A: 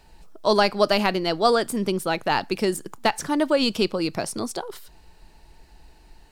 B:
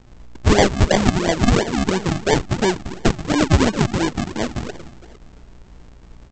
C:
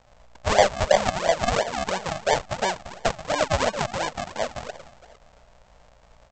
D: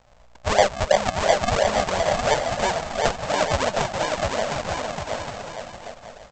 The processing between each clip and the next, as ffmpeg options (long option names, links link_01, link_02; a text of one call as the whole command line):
ffmpeg -i in.wav -filter_complex "[0:a]asplit=2[link_01][link_02];[link_02]adelay=227,lowpass=frequency=1900:poles=1,volume=-14dB,asplit=2[link_03][link_04];[link_04]adelay=227,lowpass=frequency=1900:poles=1,volume=0.49,asplit=2[link_05][link_06];[link_06]adelay=227,lowpass=frequency=1900:poles=1,volume=0.49,asplit=2[link_07][link_08];[link_08]adelay=227,lowpass=frequency=1900:poles=1,volume=0.49,asplit=2[link_09][link_10];[link_10]adelay=227,lowpass=frequency=1900:poles=1,volume=0.49[link_11];[link_01][link_03][link_05][link_07][link_09][link_11]amix=inputs=6:normalize=0,aeval=exprs='val(0)+0.00282*(sin(2*PI*60*n/s)+sin(2*PI*2*60*n/s)/2+sin(2*PI*3*60*n/s)/3+sin(2*PI*4*60*n/s)/4+sin(2*PI*5*60*n/s)/5)':channel_layout=same,aresample=16000,acrusher=samples=23:mix=1:aa=0.000001:lfo=1:lforange=23:lforate=2.9,aresample=44100,volume=5dB" out.wav
ffmpeg -i in.wav -af "lowshelf=frequency=450:width_type=q:width=3:gain=-9,volume=-4dB" out.wav
ffmpeg -i in.wav -filter_complex "[0:a]aeval=exprs='0.794*(cos(1*acos(clip(val(0)/0.794,-1,1)))-cos(1*PI/2))+0.0112*(cos(2*acos(clip(val(0)/0.794,-1,1)))-cos(2*PI/2))':channel_layout=same,asplit=2[link_01][link_02];[link_02]aecho=0:1:710|1172|1471|1666|1793:0.631|0.398|0.251|0.158|0.1[link_03];[link_01][link_03]amix=inputs=2:normalize=0" out.wav